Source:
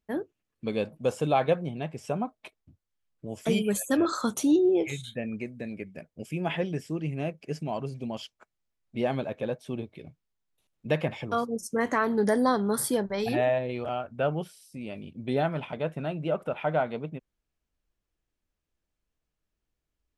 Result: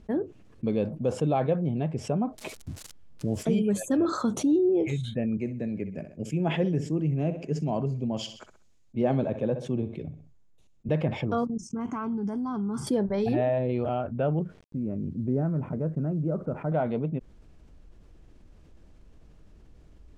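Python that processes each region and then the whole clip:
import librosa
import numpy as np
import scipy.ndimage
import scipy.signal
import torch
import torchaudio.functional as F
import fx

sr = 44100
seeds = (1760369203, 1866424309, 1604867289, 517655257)

y = fx.chain(x, sr, fx.crossing_spikes(level_db=-37.0),
    fx.low_shelf(hz=470.0, db=4.5), at=(2.38, 3.43))
y = fx.chain(y, sr, fx.peak_eq(hz=6800.0, db=9.0, octaves=0.29),
    fx.echo_feedback(ms=64, feedback_pct=35, wet_db=-16.5),
    fx.band_widen(depth_pct=70), at=(5.37, 10.89))
y = fx.chain(y, sr, fx.level_steps(step_db=17),
    fx.fixed_phaser(hz=2700.0, stages=8), at=(11.47, 12.87))
y = fx.chain(y, sr, fx.lowpass(hz=1400.0, slope=24),
    fx.peak_eq(hz=790.0, db=-11.0, octaves=1.3),
    fx.quant_companded(bits=8), at=(14.39, 16.72))
y = scipy.signal.sosfilt(scipy.signal.butter(2, 7800.0, 'lowpass', fs=sr, output='sos'), y)
y = fx.tilt_shelf(y, sr, db=7.5, hz=770.0)
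y = fx.env_flatten(y, sr, amount_pct=50)
y = y * 10.0 ** (-7.0 / 20.0)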